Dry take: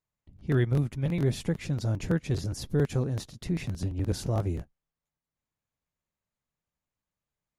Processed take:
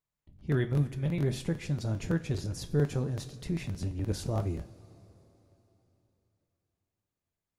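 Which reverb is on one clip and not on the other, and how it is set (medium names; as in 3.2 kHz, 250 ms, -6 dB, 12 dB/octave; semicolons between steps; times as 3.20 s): two-slope reverb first 0.33 s, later 3.6 s, from -18 dB, DRR 8.5 dB; trim -3 dB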